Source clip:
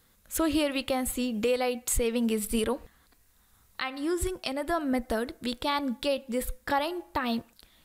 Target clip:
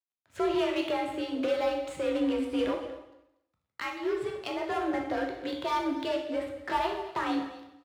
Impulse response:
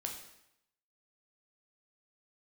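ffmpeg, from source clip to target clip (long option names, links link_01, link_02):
-filter_complex "[0:a]lowpass=2900,acrossover=split=140[link_01][link_02];[link_01]acompressor=threshold=-53dB:ratio=6[link_03];[link_03][link_02]amix=inputs=2:normalize=0,asoftclip=type=tanh:threshold=-27.5dB,asplit=2[link_04][link_05];[link_05]acrusher=bits=4:mix=0:aa=0.5,volume=-4dB[link_06];[link_04][link_06]amix=inputs=2:normalize=0,aeval=exprs='sgn(val(0))*max(abs(val(0))-0.00133,0)':channel_layout=same,afreqshift=52,aecho=1:1:239:0.15[link_07];[1:a]atrim=start_sample=2205[link_08];[link_07][link_08]afir=irnorm=-1:irlink=0"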